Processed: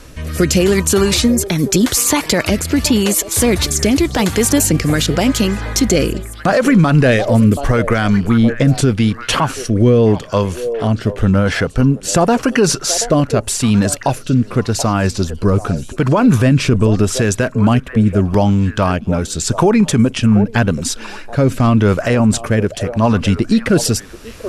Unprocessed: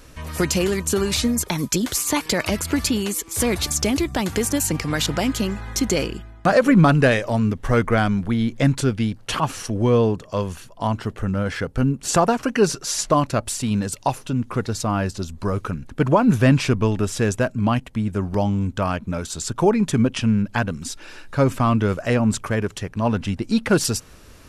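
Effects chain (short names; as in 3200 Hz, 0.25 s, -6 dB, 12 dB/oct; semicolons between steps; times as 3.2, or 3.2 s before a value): rotary speaker horn 0.85 Hz; delay with a stepping band-pass 0.729 s, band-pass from 560 Hz, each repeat 1.4 oct, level -11 dB; maximiser +13.5 dB; gain -2.5 dB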